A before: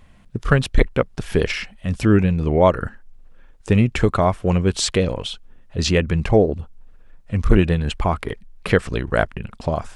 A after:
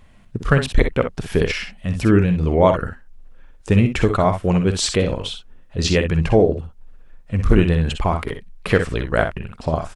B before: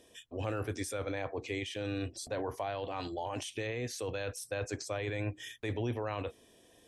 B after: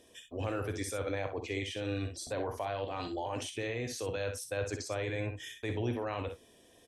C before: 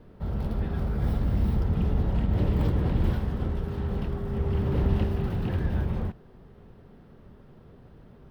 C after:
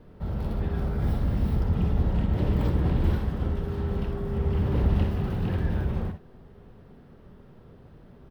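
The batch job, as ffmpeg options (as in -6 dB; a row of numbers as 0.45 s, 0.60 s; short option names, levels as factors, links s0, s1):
-af "aecho=1:1:50|62:0.251|0.355"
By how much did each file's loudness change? +0.5 LU, +1.0 LU, +0.5 LU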